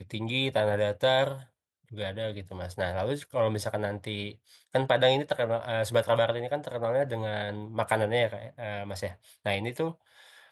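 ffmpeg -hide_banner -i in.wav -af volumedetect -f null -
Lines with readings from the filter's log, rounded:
mean_volume: -29.7 dB
max_volume: -7.9 dB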